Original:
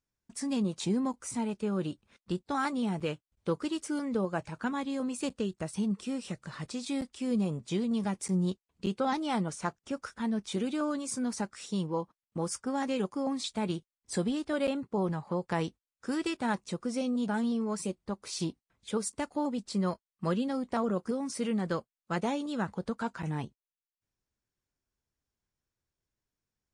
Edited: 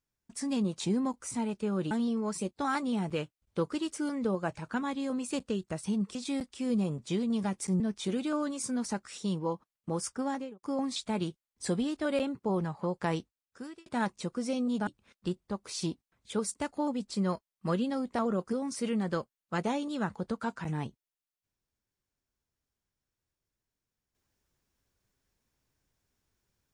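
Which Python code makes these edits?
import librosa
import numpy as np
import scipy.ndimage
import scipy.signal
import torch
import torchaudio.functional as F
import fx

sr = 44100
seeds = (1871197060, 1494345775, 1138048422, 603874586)

y = fx.studio_fade_out(x, sr, start_s=12.7, length_s=0.41)
y = fx.edit(y, sr, fx.swap(start_s=1.91, length_s=0.5, other_s=17.35, other_length_s=0.6),
    fx.cut(start_s=6.05, length_s=0.71),
    fx.cut(start_s=8.41, length_s=1.87),
    fx.fade_out_span(start_s=15.63, length_s=0.71), tone=tone)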